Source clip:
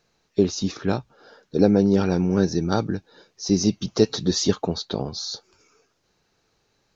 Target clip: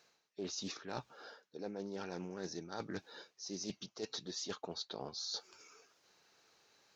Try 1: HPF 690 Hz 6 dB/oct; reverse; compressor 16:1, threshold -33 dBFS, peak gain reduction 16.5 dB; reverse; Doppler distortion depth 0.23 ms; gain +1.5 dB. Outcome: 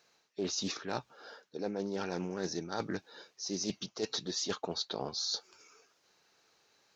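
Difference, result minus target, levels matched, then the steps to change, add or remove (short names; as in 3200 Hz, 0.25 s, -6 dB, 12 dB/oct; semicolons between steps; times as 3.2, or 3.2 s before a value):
compressor: peak gain reduction -7 dB
change: compressor 16:1, threshold -40.5 dBFS, peak gain reduction 23.5 dB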